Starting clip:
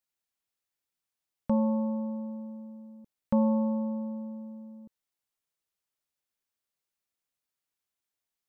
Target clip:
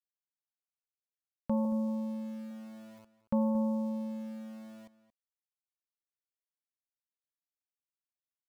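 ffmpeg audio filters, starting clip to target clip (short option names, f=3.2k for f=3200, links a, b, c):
-filter_complex "[0:a]aeval=exprs='val(0)*gte(abs(val(0)),0.00473)':c=same,asettb=1/sr,asplit=3[a][b][c];[a]atrim=end=1.654[d];[b]atrim=start=1.65:end=2.51,asetpts=PTS-STARTPTS,afade=t=in:d=0.004:c=qsin,afade=t=out:st=0.856:d=0.004:c=qsin,asuperstop=centerf=700:order=4:qfactor=2.4[e];[c]atrim=start=2.506[f];[d][e]acrossfade=d=0.004:c1=hsin:c2=qsin[g];[g][f]acrossfade=d=0.004:c1=qsin:c2=hsin,asplit=2[h][i];[i]adelay=227.4,volume=-15dB,highshelf=f=4k:g=-5.12[j];[h][j]amix=inputs=2:normalize=0,volume=-4.5dB"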